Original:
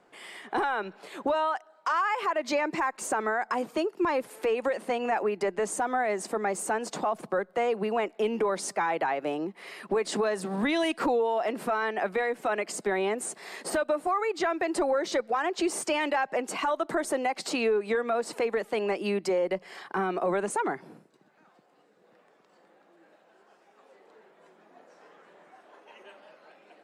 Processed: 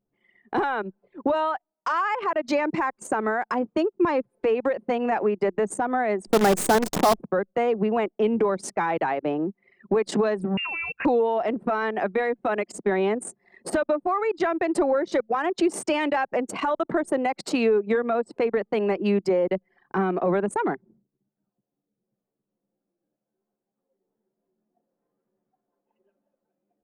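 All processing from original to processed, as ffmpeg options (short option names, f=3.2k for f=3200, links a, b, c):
-filter_complex "[0:a]asettb=1/sr,asplit=3[a][b][c];[a]atrim=end=6.274[d];[b]atrim=start=6.27:end=7.2,asetpts=PTS-STARTPTS,afade=t=in:d=0.004:c=qsin,afade=t=out:st=0.926:d=0.004:c=qsin,equalizer=f=2.6k:t=o:w=0.75:g=-9,acontrast=60,acrusher=bits=5:dc=4:mix=0:aa=0.000001[e];[c]atrim=start=7.196[f];[d][e]acrossfade=d=0.004:c1=hsin:c2=qsin[g];[g][f]acrossfade=d=0.004:c1=qsin:c2=hsin,asettb=1/sr,asplit=3[h][i][j];[h]atrim=end=10.574[k];[i]atrim=start=10.57:end=11.05,asetpts=PTS-STARTPTS,afade=t=in:d=0.004:c=qsin,afade=t=out:st=0.476:d=0.004:c=qsin,acompressor=threshold=-28dB:ratio=6:attack=3.2:release=140:knee=1:detection=peak,lowpass=f=2.6k:t=q:w=0.5098,lowpass=f=2.6k:t=q:w=0.6013,lowpass=f=2.6k:t=q:w=0.9,lowpass=f=2.6k:t=q:w=2.563,afreqshift=-3000[l];[j]atrim=start=11.046[m];[k][l]acrossfade=d=0.004:c1=hsin:c2=qsin[n];[n][m]acrossfade=d=0.004:c1=qsin:c2=hsin,anlmdn=10,equalizer=f=150:t=o:w=2.5:g=8.5,volume=1.5dB"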